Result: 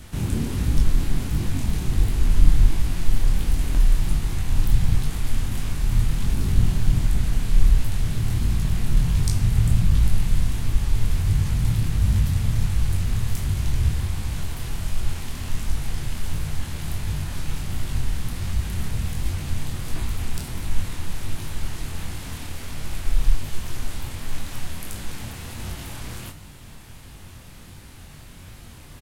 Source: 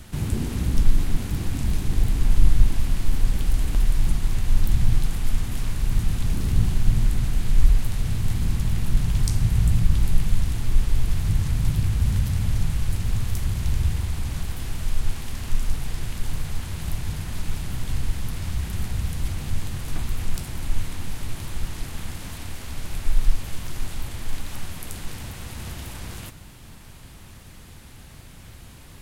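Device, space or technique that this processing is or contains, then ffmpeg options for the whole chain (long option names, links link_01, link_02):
double-tracked vocal: -filter_complex "[0:a]asplit=2[link_01][link_02];[link_02]adelay=34,volume=-12dB[link_03];[link_01][link_03]amix=inputs=2:normalize=0,flanger=delay=19.5:depth=7.7:speed=1.4,volume=4dB"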